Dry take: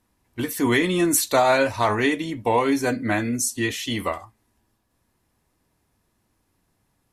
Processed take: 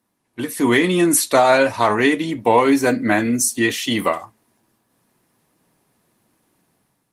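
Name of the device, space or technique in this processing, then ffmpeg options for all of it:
video call: -af "highpass=f=130:w=0.5412,highpass=f=130:w=1.3066,dynaudnorm=f=220:g=5:m=2.66" -ar 48000 -c:a libopus -b:a 24k

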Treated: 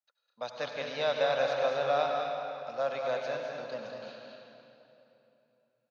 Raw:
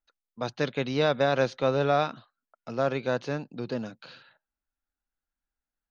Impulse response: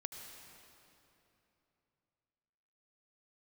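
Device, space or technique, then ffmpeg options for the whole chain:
stadium PA: -filter_complex "[0:a]asettb=1/sr,asplit=3[s0][s1][s2];[s0]atrim=end=2.824[s3];[s1]atrim=start=2.82:end=3.46,asetpts=PTS-STARTPTS,afade=t=in:d=0.004:c=qsin,afade=t=out:st=0.636:d=0.004:c=qsin,highpass=f=110:w=0.5412,highpass=f=110:w=1.3066[s4];[s2]atrim=start=3.456[s5];[s3][s4]acrossfade=d=0.004:c1=hsin:c2=qsin[s6];[s6][s5]acrossfade=d=0.004:c1=qsin:c2=hsin,highpass=170,lowshelf=f=460:t=q:w=3:g=-6.5,equalizer=f=3400:t=o:w=1.3:g=4,aecho=1:1:204.1|236.2:0.447|0.282[s7];[1:a]atrim=start_sample=2205[s8];[s7][s8]afir=irnorm=-1:irlink=0,volume=0.596"

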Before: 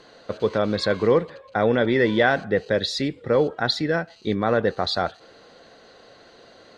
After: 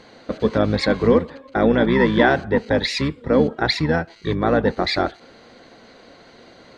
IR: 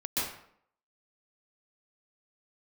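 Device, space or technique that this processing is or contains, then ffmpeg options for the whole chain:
octave pedal: -filter_complex "[0:a]asplit=2[s0][s1];[s1]asetrate=22050,aresample=44100,atempo=2,volume=0.708[s2];[s0][s2]amix=inputs=2:normalize=0,volume=1.19"

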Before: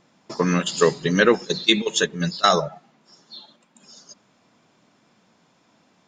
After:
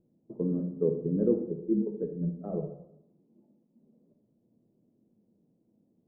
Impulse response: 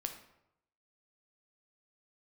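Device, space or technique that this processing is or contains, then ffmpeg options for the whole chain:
next room: -filter_complex "[0:a]lowpass=f=440:w=0.5412,lowpass=f=440:w=1.3066[s0];[1:a]atrim=start_sample=2205[s1];[s0][s1]afir=irnorm=-1:irlink=0,volume=0.562"

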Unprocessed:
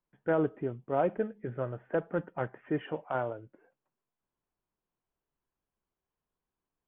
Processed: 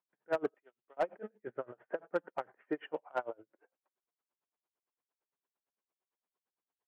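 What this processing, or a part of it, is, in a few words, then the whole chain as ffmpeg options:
helicopter radio: -filter_complex "[0:a]asettb=1/sr,asplit=3[s0][s1][s2];[s0]atrim=end=0.544[s3];[s1]atrim=start=0.54:end=0.97,asetpts=PTS-STARTPTS,afade=t=in:d=0.004:c=qsin,afade=t=out:st=0.426:d=0.004:c=qsin,aderivative[s4];[s2]atrim=start=0.966[s5];[s3][s4]acrossfade=d=0.004:c1=hsin:c2=qsin[s6];[s6][s5]acrossfade=d=0.004:c1=qsin:c2=hsin,highpass=380,lowpass=2900,aeval=exprs='val(0)*pow(10,-29*(0.5-0.5*cos(2*PI*8.8*n/s))/20)':c=same,asoftclip=type=hard:threshold=0.0501,volume=1.33"

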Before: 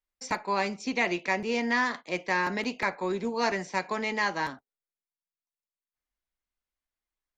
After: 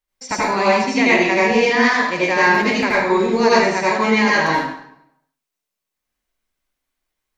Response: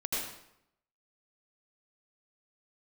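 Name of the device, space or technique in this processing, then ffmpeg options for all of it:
bathroom: -filter_complex "[1:a]atrim=start_sample=2205[s0];[0:a][s0]afir=irnorm=-1:irlink=0,volume=2.37"

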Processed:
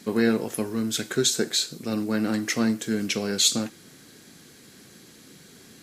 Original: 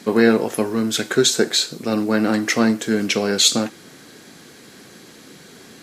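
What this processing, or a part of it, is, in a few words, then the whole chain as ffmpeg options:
smiley-face EQ: -af "lowshelf=f=170:g=6.5,equalizer=f=750:t=o:w=1.9:g=-3.5,highshelf=f=6200:g=6,volume=0.422"

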